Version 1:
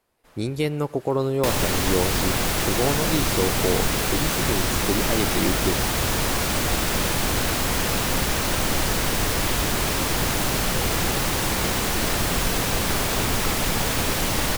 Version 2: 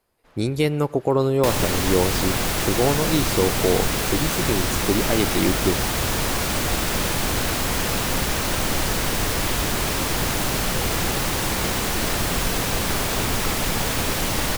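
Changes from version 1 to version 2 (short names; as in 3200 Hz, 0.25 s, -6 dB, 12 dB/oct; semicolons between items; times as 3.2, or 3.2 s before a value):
speech +3.5 dB; first sound: add air absorption 100 m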